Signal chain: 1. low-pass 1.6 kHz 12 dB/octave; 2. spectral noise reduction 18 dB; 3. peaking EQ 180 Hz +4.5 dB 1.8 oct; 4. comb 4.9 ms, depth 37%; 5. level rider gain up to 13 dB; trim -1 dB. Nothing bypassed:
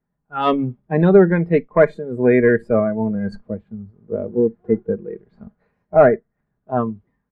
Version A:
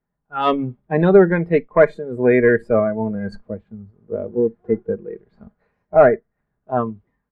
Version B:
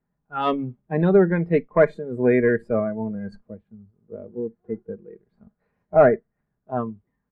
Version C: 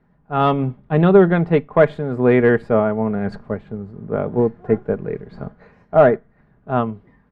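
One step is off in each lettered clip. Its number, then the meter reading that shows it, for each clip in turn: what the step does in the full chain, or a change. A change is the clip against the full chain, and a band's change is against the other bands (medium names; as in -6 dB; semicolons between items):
3, 125 Hz band -3.0 dB; 5, crest factor change +1.5 dB; 2, 125 Hz band +2.0 dB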